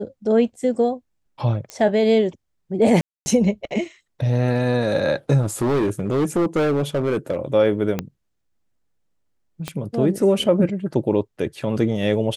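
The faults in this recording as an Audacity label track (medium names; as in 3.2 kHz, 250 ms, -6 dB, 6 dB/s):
1.700000	1.700000	pop -16 dBFS
3.010000	3.260000	dropout 250 ms
5.410000	7.370000	clipped -16 dBFS
7.990000	7.990000	pop -10 dBFS
9.680000	9.680000	pop -12 dBFS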